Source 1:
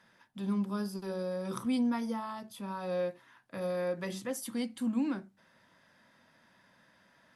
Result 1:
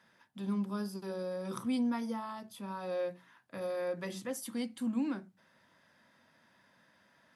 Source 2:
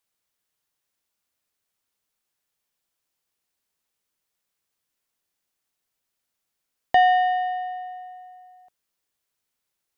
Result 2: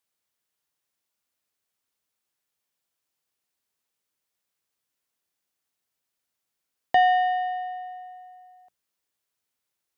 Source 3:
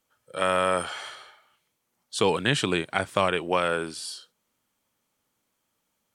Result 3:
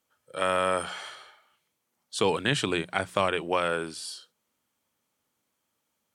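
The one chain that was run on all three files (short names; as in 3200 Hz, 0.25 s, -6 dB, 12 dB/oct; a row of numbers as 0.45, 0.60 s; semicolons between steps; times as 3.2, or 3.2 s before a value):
HPF 50 Hz; notches 60/120/180 Hz; gain -2 dB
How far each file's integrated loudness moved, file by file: -2.0, -2.0, -2.0 LU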